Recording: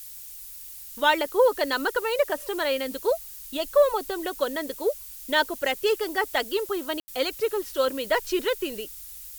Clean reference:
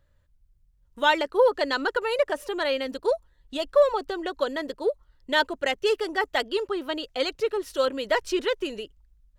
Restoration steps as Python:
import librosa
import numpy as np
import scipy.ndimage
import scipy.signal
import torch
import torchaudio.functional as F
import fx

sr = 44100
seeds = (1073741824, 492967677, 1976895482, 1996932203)

y = fx.fix_ambience(x, sr, seeds[0], print_start_s=0.04, print_end_s=0.54, start_s=7.0, end_s=7.08)
y = fx.noise_reduce(y, sr, print_start_s=0.04, print_end_s=0.54, reduce_db=20.0)